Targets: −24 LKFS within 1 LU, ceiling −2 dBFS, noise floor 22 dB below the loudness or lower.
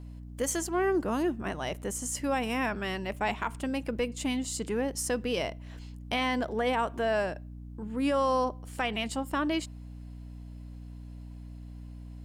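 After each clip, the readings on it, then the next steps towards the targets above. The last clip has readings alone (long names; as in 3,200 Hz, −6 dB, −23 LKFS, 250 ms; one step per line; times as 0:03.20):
mains hum 60 Hz; hum harmonics up to 300 Hz; level of the hum −41 dBFS; integrated loudness −30.5 LKFS; sample peak −18.5 dBFS; target loudness −24.0 LKFS
→ mains-hum notches 60/120/180/240/300 Hz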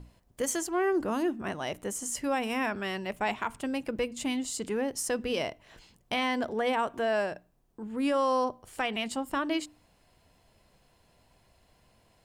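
mains hum none found; integrated loudness −31.0 LKFS; sample peak −18.0 dBFS; target loudness −24.0 LKFS
→ level +7 dB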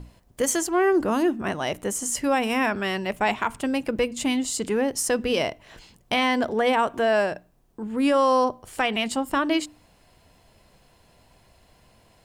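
integrated loudness −24.0 LKFS; sample peak −11.0 dBFS; background noise floor −59 dBFS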